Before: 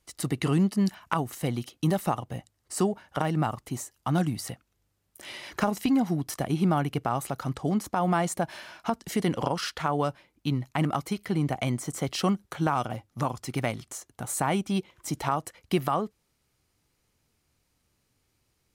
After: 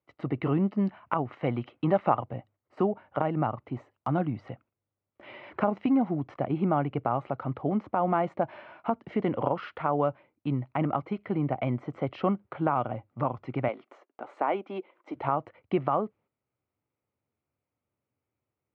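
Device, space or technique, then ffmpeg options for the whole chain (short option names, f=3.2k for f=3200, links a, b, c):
bass cabinet: -filter_complex "[0:a]asettb=1/sr,asplit=3[a][b][c];[a]atrim=end=13.684[d];[b]atrim=start=13.68:end=15.15,asetpts=PTS-STARTPTS,afade=t=in:d=0.004:c=qsin,afade=t=out:st=1.466:d=0.004:c=qsin,highpass=f=290:w=0.5412,highpass=f=290:w=1.3066[e];[c]atrim=start=15.146[f];[d][e]acrossfade=d=0.004:c1=hsin:c2=qsin[g];[g][f]acrossfade=d=0.004:c1=qsin:c2=hsin,highpass=f=90:w=0.5412,highpass=f=90:w=1.3066,equalizer=f=170:t=q:w=4:g=-6,equalizer=f=580:t=q:w=4:g=4,equalizer=f=1.7k:t=q:w=4:g=-8,lowpass=f=2.2k:w=0.5412,lowpass=f=2.2k:w=1.3066,agate=range=-10dB:threshold=-57dB:ratio=16:detection=peak,asettb=1/sr,asplit=3[h][i][j];[h]atrim=end=1.254[k];[i]atrim=start=1.25:end=2.24,asetpts=PTS-STARTPTS,afade=t=in:d=0.004:c=qsin,afade=t=out:st=0.986:d=0.004:c=qsin,equalizer=f=1.7k:t=o:w=2.8:g=6[l];[j]atrim=start=2.236[m];[k][l]acrossfade=d=0.004:c1=hsin:c2=qsin[n];[n][m]acrossfade=d=0.004:c1=qsin:c2=hsin"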